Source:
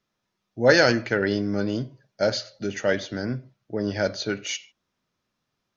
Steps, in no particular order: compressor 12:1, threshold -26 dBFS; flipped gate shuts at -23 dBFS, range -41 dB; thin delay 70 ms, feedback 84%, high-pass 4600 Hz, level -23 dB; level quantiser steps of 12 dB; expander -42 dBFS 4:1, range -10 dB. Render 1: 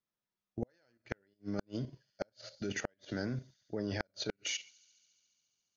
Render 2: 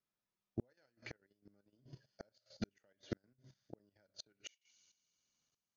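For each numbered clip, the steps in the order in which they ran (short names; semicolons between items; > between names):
expander > level quantiser > compressor > thin delay > flipped gate; thin delay > expander > compressor > flipped gate > level quantiser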